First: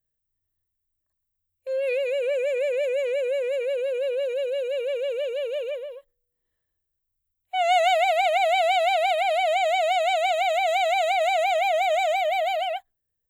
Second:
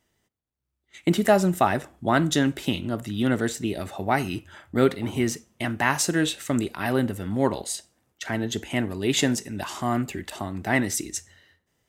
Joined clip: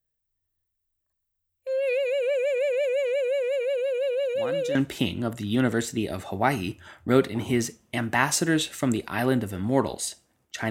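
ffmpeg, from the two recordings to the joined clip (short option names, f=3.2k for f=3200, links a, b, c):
-filter_complex "[1:a]asplit=2[a][b];[0:a]apad=whole_dur=10.7,atrim=end=10.7,atrim=end=4.752[c];[b]atrim=start=2.418:end=8.37[d];[a]atrim=start=1.89:end=2.42,asetpts=PTS-STARTPTS,volume=-15dB,afade=t=in:d=0.004:c=hsin,afade=t=out:st=0.526:d=0.004:c=hsin,adelay=4220[e];[c][d]acrossfade=d=0.004:c1=hsin:c2=hsin[f];[f][e]amix=inputs=2:normalize=0"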